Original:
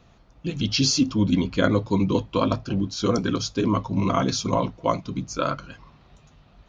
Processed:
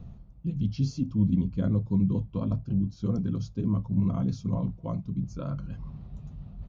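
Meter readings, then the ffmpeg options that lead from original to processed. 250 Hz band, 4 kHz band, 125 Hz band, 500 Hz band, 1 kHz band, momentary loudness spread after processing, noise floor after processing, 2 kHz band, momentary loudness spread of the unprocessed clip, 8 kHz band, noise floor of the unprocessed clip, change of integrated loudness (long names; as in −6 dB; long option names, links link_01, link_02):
−4.5 dB, below −20 dB, 0.0 dB, −14.5 dB, −19.5 dB, 15 LU, −51 dBFS, below −20 dB, 7 LU, can't be measured, −56 dBFS, −5.5 dB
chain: -af "firequalizer=gain_entry='entry(190,0);entry(290,-13);entry(1600,-25)':delay=0.05:min_phase=1,areverse,acompressor=mode=upward:threshold=-27dB:ratio=2.5,areverse"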